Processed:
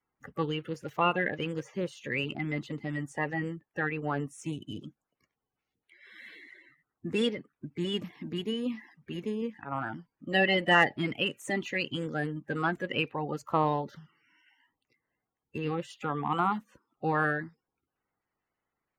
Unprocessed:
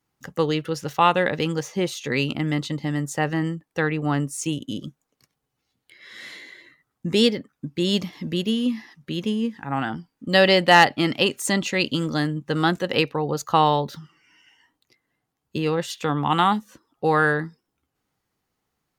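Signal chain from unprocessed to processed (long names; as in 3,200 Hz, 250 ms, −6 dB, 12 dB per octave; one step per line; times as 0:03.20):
spectral magnitudes quantised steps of 30 dB
high shelf with overshoot 3,200 Hz −7.5 dB, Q 1.5
level −8.5 dB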